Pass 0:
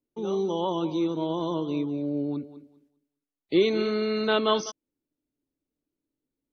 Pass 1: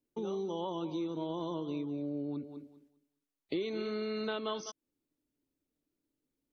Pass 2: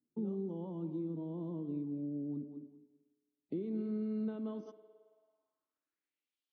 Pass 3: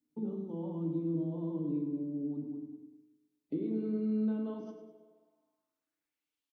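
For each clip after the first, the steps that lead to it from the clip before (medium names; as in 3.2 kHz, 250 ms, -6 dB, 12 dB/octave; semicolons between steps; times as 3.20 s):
compression 4:1, threshold -35 dBFS, peak gain reduction 15.5 dB
spring tank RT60 1.4 s, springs 54 ms, chirp 40 ms, DRR 14.5 dB; band-pass sweep 200 Hz -> 3.3 kHz, 4.44–6.42 s; trim +5 dB
on a send: feedback delay 102 ms, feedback 42%, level -10.5 dB; on the sum: FDN reverb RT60 0.72 s, low-frequency decay 1.5×, high-frequency decay 0.5×, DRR 3.5 dB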